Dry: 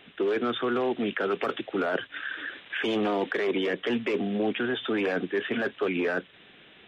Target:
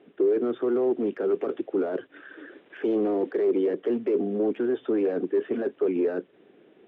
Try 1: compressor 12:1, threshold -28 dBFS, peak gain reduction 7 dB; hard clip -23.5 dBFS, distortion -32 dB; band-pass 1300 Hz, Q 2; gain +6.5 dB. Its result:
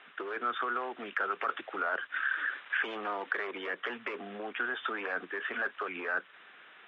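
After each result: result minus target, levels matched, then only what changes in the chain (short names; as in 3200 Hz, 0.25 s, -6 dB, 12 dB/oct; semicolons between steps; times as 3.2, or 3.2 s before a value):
1000 Hz band +14.5 dB; compressor: peak gain reduction +7 dB
change: band-pass 370 Hz, Q 2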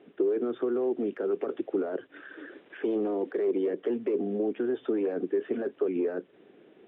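compressor: peak gain reduction +7 dB
remove: compressor 12:1, threshold -28 dBFS, peak gain reduction 7 dB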